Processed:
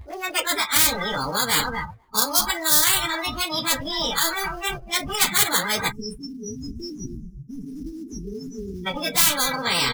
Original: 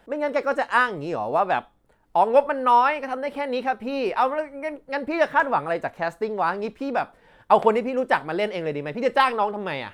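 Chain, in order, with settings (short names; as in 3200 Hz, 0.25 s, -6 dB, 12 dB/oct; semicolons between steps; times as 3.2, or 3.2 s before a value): pitch shift by moving bins +4 st; low shelf 130 Hz +9 dB; feedback echo 0.251 s, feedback 17%, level -22 dB; dynamic EQ 2900 Hz, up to +7 dB, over -40 dBFS, Q 2.4; reverse; upward compressor, threshold -18 dBFS; reverse; spectral delete 5.92–8.87, 450–5100 Hz; in parallel at -8.5 dB: sample-rate reducer 5600 Hz, jitter 20%; on the sum: spectral noise reduction 26 dB; spectral compressor 10:1; gain +3.5 dB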